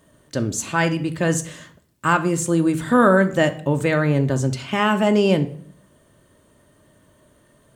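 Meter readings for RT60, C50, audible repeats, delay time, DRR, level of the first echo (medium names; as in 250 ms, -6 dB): 0.55 s, 14.5 dB, no echo, no echo, 7.0 dB, no echo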